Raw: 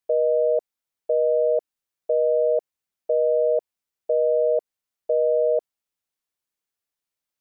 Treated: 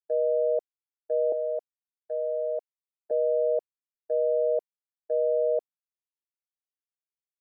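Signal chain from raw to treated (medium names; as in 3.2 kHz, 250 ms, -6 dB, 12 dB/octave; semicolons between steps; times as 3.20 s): expander -19 dBFS; 1.32–3.11 s: high-pass 640 Hz 12 dB/octave; trim -4 dB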